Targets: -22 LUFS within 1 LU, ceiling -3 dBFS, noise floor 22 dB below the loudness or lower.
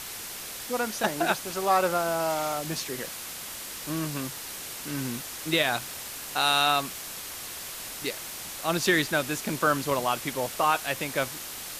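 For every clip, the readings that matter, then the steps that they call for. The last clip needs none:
noise floor -39 dBFS; noise floor target -50 dBFS; loudness -28.0 LUFS; peak level -9.5 dBFS; loudness target -22.0 LUFS
-> noise print and reduce 11 dB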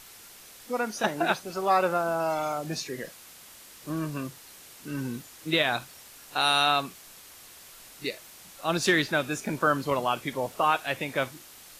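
noise floor -50 dBFS; loudness -28.0 LUFS; peak level -10.0 dBFS; loudness target -22.0 LUFS
-> trim +6 dB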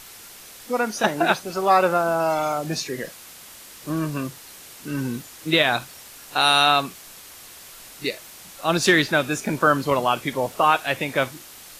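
loudness -22.0 LUFS; peak level -4.0 dBFS; noise floor -44 dBFS

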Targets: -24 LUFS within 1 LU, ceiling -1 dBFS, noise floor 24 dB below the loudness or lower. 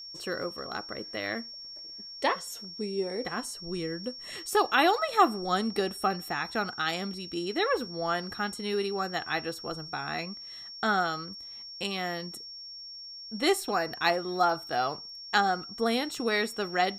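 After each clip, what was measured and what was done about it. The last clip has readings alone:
tick rate 26 per s; steady tone 5.5 kHz; tone level -41 dBFS; loudness -30.0 LUFS; peak level -9.5 dBFS; loudness target -24.0 LUFS
-> de-click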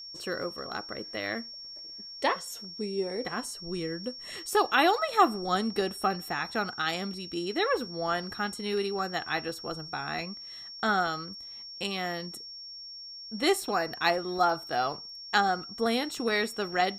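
tick rate 0 per s; steady tone 5.5 kHz; tone level -41 dBFS
-> band-stop 5.5 kHz, Q 30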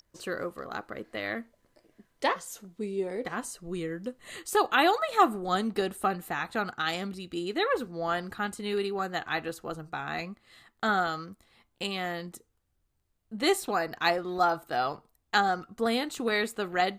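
steady tone not found; loudness -30.0 LUFS; peak level -9.5 dBFS; loudness target -24.0 LUFS
-> trim +6 dB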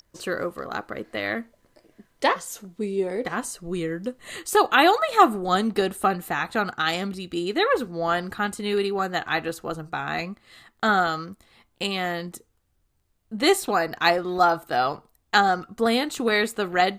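loudness -24.0 LUFS; peak level -3.5 dBFS; noise floor -69 dBFS

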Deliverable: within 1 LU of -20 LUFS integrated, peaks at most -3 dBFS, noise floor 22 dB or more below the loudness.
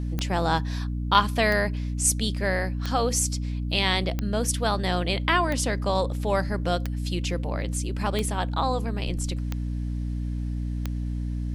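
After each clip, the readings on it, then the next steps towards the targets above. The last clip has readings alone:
clicks found 9; hum 60 Hz; highest harmonic 300 Hz; hum level -26 dBFS; loudness -26.0 LUFS; peak level -5.5 dBFS; loudness target -20.0 LUFS
-> de-click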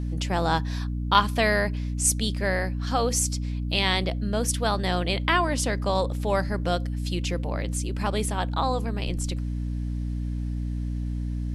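clicks found 0; hum 60 Hz; highest harmonic 300 Hz; hum level -26 dBFS
-> hum notches 60/120/180/240/300 Hz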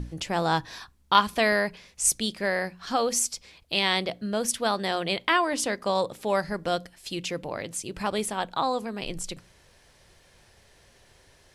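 hum not found; loudness -27.0 LUFS; peak level -5.5 dBFS; loudness target -20.0 LUFS
-> trim +7 dB; peak limiter -3 dBFS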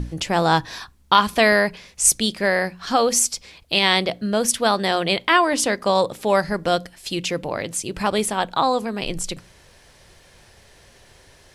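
loudness -20.0 LUFS; peak level -3.0 dBFS; noise floor -52 dBFS

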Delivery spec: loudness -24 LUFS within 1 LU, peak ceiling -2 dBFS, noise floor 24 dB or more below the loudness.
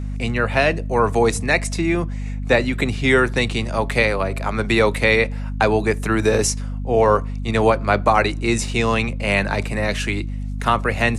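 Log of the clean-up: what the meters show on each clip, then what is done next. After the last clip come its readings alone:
hum 50 Hz; highest harmonic 250 Hz; hum level -24 dBFS; loudness -19.5 LUFS; peak level -3.0 dBFS; loudness target -24.0 LUFS
-> hum notches 50/100/150/200/250 Hz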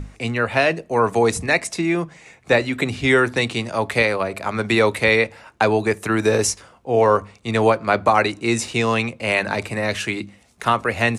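hum not found; loudness -20.0 LUFS; peak level -4.0 dBFS; loudness target -24.0 LUFS
-> trim -4 dB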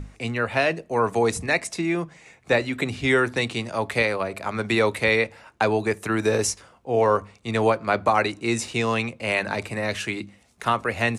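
loudness -24.0 LUFS; peak level -8.0 dBFS; noise floor -56 dBFS

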